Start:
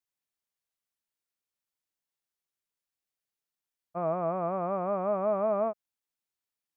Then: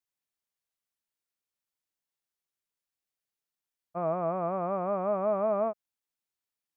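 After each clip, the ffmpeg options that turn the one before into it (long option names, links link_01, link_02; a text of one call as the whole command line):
ffmpeg -i in.wav -af anull out.wav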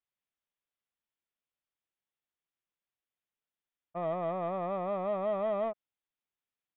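ffmpeg -i in.wav -filter_complex "[0:a]asplit=2[link_01][link_02];[link_02]asoftclip=type=hard:threshold=-32dB,volume=-3.5dB[link_03];[link_01][link_03]amix=inputs=2:normalize=0,aresample=8000,aresample=44100,volume=-6dB" out.wav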